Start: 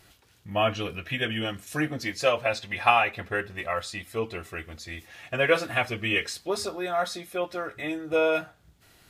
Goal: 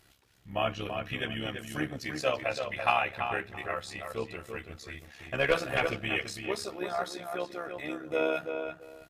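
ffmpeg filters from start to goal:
ffmpeg -i in.wav -filter_complex "[0:a]asplit=2[link_01][link_02];[link_02]adelay=335,lowpass=frequency=2600:poles=1,volume=-6dB,asplit=2[link_03][link_04];[link_04]adelay=335,lowpass=frequency=2600:poles=1,volume=0.2,asplit=2[link_05][link_06];[link_06]adelay=335,lowpass=frequency=2600:poles=1,volume=0.2[link_07];[link_01][link_03][link_05][link_07]amix=inputs=4:normalize=0,asettb=1/sr,asplit=3[link_08][link_09][link_10];[link_08]atrim=end=5.194[link_11];[link_09]atrim=start=5.19:end=5.96,asetpts=PTS-STARTPTS,afade=type=in:duration=0.004:curve=qsin,afade=type=out:start_time=0.766:duration=0.004:curve=qsin,aeval=exprs='0.376*(cos(1*acos(clip(val(0)/0.376,-1,1)))-cos(1*PI/2))+0.0841*(cos(2*acos(clip(val(0)/0.376,-1,1)))-cos(2*PI/2))+0.0422*(cos(5*acos(clip(val(0)/0.376,-1,1)))-cos(5*PI/2))+0.0133*(cos(7*acos(clip(val(0)/0.376,-1,1)))-cos(7*PI/2))':channel_layout=same[link_12];[link_10]atrim=start=5.956[link_13];[link_11][link_12]acrossfade=duration=0.004:curve1=hsin:curve2=qsin[link_14];[link_14][link_13]acrossfade=duration=0.004:curve1=qsin:curve2=hsin,tremolo=f=68:d=0.667,volume=-3dB" out.wav

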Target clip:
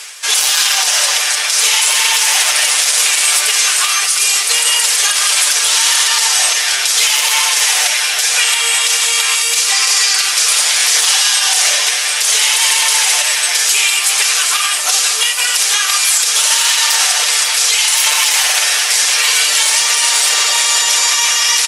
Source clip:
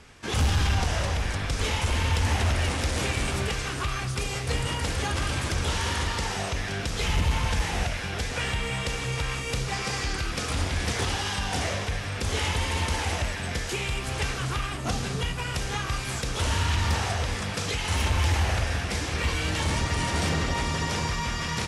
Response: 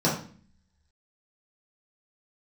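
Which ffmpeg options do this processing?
-filter_complex "[0:a]areverse,acompressor=mode=upward:threshold=-33dB:ratio=2.5,areverse,highpass=frequency=460:width=0.5412,highpass=frequency=460:width=1.3066,aderivative,aecho=1:1:6.7:0.58,asplit=2[link_01][link_02];[link_02]aecho=0:1:547|1094|1641|2188:0.224|0.0963|0.0414|0.0178[link_03];[link_01][link_03]amix=inputs=2:normalize=0,alimiter=level_in=27.5dB:limit=-1dB:release=50:level=0:latency=1,volume=-1dB"

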